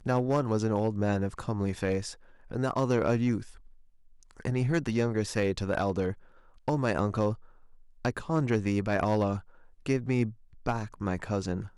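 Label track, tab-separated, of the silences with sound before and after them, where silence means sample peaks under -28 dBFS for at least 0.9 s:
3.380000	4.450000	silence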